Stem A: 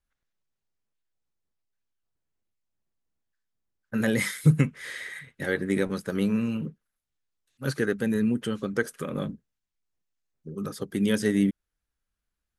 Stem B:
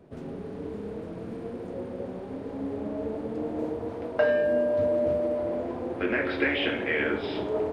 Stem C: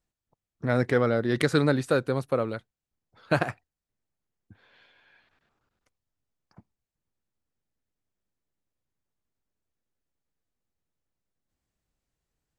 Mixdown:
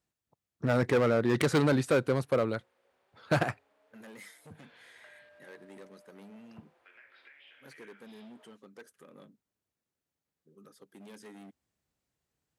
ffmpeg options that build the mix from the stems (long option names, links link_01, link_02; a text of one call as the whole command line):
ffmpeg -i stem1.wav -i stem2.wav -i stem3.wav -filter_complex "[0:a]asoftclip=type=hard:threshold=-23.5dB,highpass=240,volume=-20dB[link_01];[1:a]highpass=1400,acompressor=threshold=-35dB:ratio=6,adelay=850,volume=-19.5dB[link_02];[2:a]asoftclip=type=hard:threshold=-20.5dB,highpass=78,volume=0.5dB[link_03];[link_01][link_02][link_03]amix=inputs=3:normalize=0" out.wav